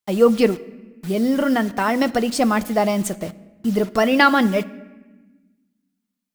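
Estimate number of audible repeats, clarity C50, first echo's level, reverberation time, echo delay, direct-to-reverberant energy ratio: no echo, 19.0 dB, no echo, 1.2 s, no echo, 10.0 dB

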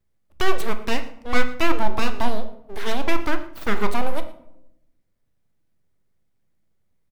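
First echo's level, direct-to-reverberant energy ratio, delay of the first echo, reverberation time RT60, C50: -19.5 dB, 8.0 dB, 116 ms, 0.80 s, 12.0 dB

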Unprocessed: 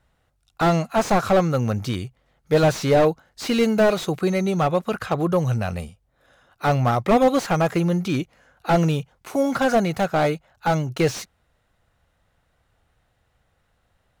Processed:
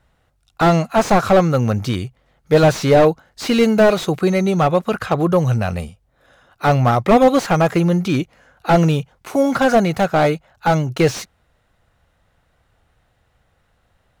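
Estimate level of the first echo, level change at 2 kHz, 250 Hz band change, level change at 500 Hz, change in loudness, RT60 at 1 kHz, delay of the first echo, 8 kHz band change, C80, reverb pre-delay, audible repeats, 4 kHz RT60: no echo, +4.5 dB, +5.0 dB, +5.0 dB, +5.0 dB, no reverb, no echo, +3.5 dB, no reverb, no reverb, no echo, no reverb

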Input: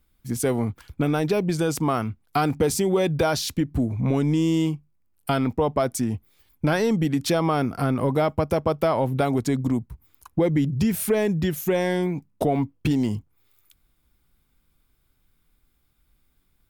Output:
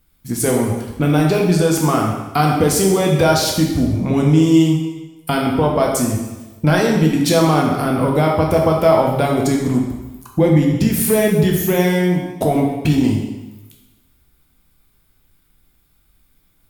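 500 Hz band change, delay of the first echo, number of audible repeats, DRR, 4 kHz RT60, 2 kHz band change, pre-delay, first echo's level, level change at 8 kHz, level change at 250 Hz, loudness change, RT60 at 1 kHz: +7.0 dB, no echo, no echo, -1.0 dB, 1.0 s, +7.5 dB, 5 ms, no echo, +9.5 dB, +8.0 dB, +7.5 dB, 1.1 s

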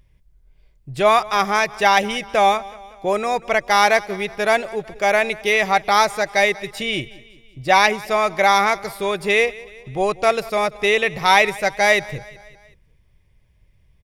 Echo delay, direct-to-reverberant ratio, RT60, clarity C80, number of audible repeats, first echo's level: 187 ms, no reverb, no reverb, no reverb, 3, -20.5 dB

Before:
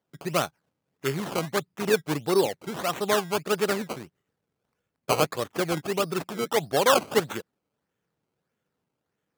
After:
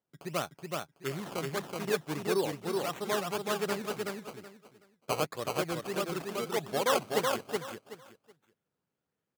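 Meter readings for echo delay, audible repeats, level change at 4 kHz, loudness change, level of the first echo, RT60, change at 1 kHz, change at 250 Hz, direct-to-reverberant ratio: 375 ms, 3, -6.0 dB, -7.0 dB, -3.0 dB, no reverb, -6.0 dB, -6.0 dB, no reverb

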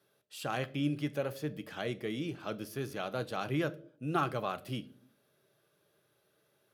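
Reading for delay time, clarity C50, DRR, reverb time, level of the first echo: no echo, 19.5 dB, 12.0 dB, 0.50 s, no echo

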